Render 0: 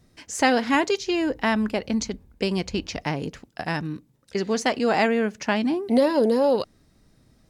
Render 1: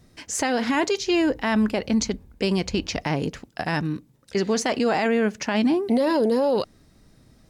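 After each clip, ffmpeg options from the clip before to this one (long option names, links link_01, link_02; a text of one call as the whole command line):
ffmpeg -i in.wav -af "alimiter=limit=-18dB:level=0:latency=1:release=21,volume=4dB" out.wav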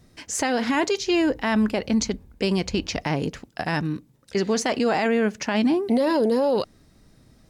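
ffmpeg -i in.wav -af anull out.wav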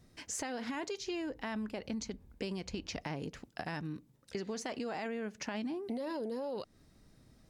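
ffmpeg -i in.wav -af "acompressor=threshold=-29dB:ratio=5,volume=-7.5dB" out.wav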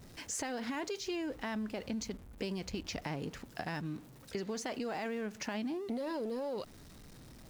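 ffmpeg -i in.wav -af "aeval=exprs='val(0)+0.5*0.00282*sgn(val(0))':channel_layout=same" out.wav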